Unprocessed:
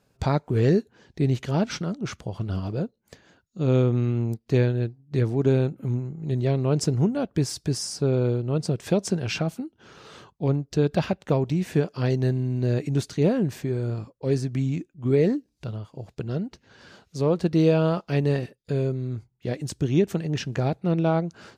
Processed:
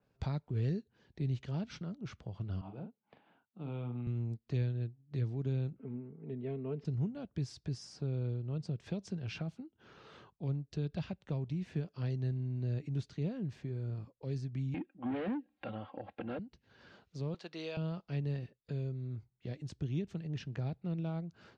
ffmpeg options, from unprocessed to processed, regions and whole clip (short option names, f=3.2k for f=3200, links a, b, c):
-filter_complex "[0:a]asettb=1/sr,asplit=3[a][b][c];[a]atrim=end=2.614[d];[b]atrim=start=2.61:end=4.07,asetpts=PTS-STARTPTS,afade=t=in:d=0.004:c=qsin,afade=t=out:st=1.456:d=0.004:c=qsin,highpass=210,equalizer=f=370:t=q:w=4:g=-7,equalizer=f=520:t=q:w=4:g=-7,equalizer=f=830:t=q:w=4:g=8,equalizer=f=1.8k:t=q:w=4:g=-9,lowpass=f=3k:w=0.5412,lowpass=f=3k:w=1.3066,asplit=2[e][f];[f]adelay=41,volume=-7dB[g];[e][g]amix=inputs=2:normalize=0,atrim=end_sample=64386[h];[c]atrim=start=4.066[i];[d][h]acrossfade=d=0.004:c1=hsin:c2=qsin[j];[j][i]acrossfade=d=0.004:c1=qsin:c2=hsin,asettb=1/sr,asplit=3[k][l][m];[k]atrim=end=5.784[n];[l]atrim=start=5.78:end=6.85,asetpts=PTS-STARTPTS,afade=t=in:d=0.004:c=qsin,afade=t=out:st=1.066:d=0.004:c=qsin,highpass=130,equalizer=f=180:t=q:w=4:g=-10,equalizer=f=260:t=q:w=4:g=4,equalizer=f=420:t=q:w=4:g=8,lowpass=f=2.6k:w=0.5412,lowpass=f=2.6k:w=1.3066,aecho=1:1:4.5:0.57,atrim=end_sample=47187[o];[m]atrim=start=6.846[p];[n][o]acrossfade=d=0.004:c1=hsin:c2=qsin[q];[q][p]acrossfade=d=0.004:c1=qsin:c2=hsin,asettb=1/sr,asplit=3[r][s][t];[r]atrim=end=14.744[u];[s]atrim=start=14.74:end=16.39,asetpts=PTS-STARTPTS,afade=t=in:d=0.004:c=qsin,afade=t=out:st=1.646:d=0.004:c=qsin,aecho=1:1:3.7:0.83,atrim=end_sample=72765,asplit=2[v][w];[w]highpass=f=720:p=1,volume=27dB,asoftclip=type=tanh:threshold=-9dB[x];[v][x]amix=inputs=2:normalize=0,lowpass=f=1.4k:p=1,volume=-6dB,highpass=110,equalizer=f=150:t=q:w=4:g=-10,equalizer=f=740:t=q:w=4:g=9,equalizer=f=1.7k:t=q:w=4:g=4,lowpass=f=3.1k:w=0.5412,lowpass=f=3.1k:w=1.3066[y];[t]atrim=start=16.386[z];[u][y]acrossfade=d=0.004:c1=hsin:c2=qsin[aa];[aa][z]acrossfade=d=0.004:c1=qsin:c2=hsin,asettb=1/sr,asplit=3[ab][ac][ad];[ab]atrim=end=17.344[ae];[ac]atrim=start=17.34:end=17.77,asetpts=PTS-STARTPTS,afade=t=in:d=0.004:c=qsin,afade=t=out:st=0.426:d=0.004:c=qsin,highpass=730,highshelf=f=8.9k:g=-7,acontrast=86[af];[ad]atrim=start=17.766[ag];[ae][af]acrossfade=d=0.004:c1=hsin:c2=qsin[ah];[ah][ag]acrossfade=d=0.004:c1=qsin:c2=hsin,lowpass=4k,acrossover=split=180|3000[ai][aj][ak];[aj]acompressor=threshold=-43dB:ratio=2[al];[ai][al][ak]amix=inputs=3:normalize=0,adynamicequalizer=threshold=0.00224:dfrequency=3000:dqfactor=0.7:tfrequency=3000:tqfactor=0.7:attack=5:release=100:ratio=0.375:range=2:mode=cutabove:tftype=highshelf,volume=-9dB"